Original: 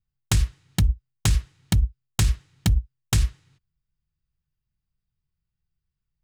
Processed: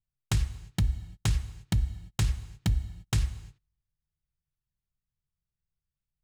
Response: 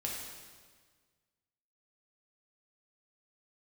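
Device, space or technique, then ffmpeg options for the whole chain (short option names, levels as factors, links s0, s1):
keyed gated reverb: -filter_complex "[0:a]asplit=3[s0][s1][s2];[1:a]atrim=start_sample=2205[s3];[s1][s3]afir=irnorm=-1:irlink=0[s4];[s2]apad=whole_len=275095[s5];[s4][s5]sidechaingate=range=0.0224:threshold=0.00355:ratio=16:detection=peak,volume=0.251[s6];[s0][s6]amix=inputs=2:normalize=0,highshelf=f=5600:g=-5.5,volume=0.422"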